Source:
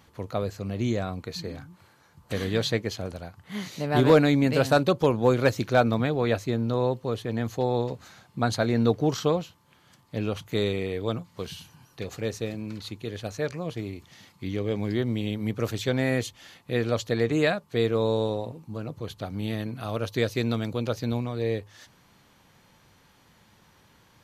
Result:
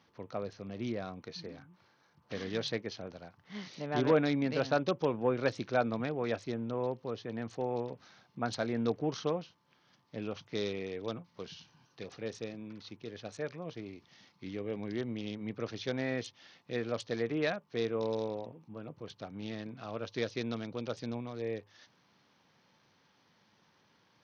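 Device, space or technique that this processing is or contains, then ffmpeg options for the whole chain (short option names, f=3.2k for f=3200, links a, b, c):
Bluetooth headset: -filter_complex "[0:a]asettb=1/sr,asplit=3[a][b][c];[a]atrim=end=12.604[d];[b]atrim=start=12.6:end=13.15,asetpts=PTS-STARTPTS,afade=t=in:d=0.004:c=qsin,afade=t=out:st=0.546:d=0.004:c=qsin,highshelf=f=4.6k:g=-5.5[e];[c]atrim=start=13.146[f];[d][e]acrossfade=d=0.004:c1=hsin:c2=qsin[g];[g][f]acrossfade=d=0.004:c1=qsin:c2=hsin,highpass=150,aresample=16000,aresample=44100,volume=-8.5dB" -ar 48000 -c:a sbc -b:a 64k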